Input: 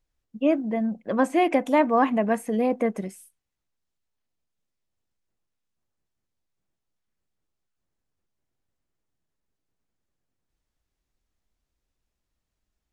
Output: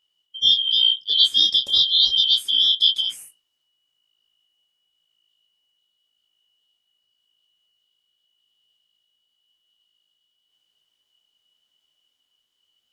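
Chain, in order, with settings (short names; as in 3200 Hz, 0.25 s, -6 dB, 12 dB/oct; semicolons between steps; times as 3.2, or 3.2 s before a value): four-band scrambler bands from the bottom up 3412; vocal rider 0.5 s; detuned doubles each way 32 cents; gain +8 dB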